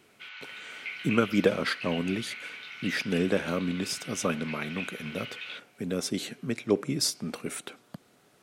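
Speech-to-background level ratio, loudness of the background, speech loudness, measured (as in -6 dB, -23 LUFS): 9.0 dB, -39.5 LUFS, -30.5 LUFS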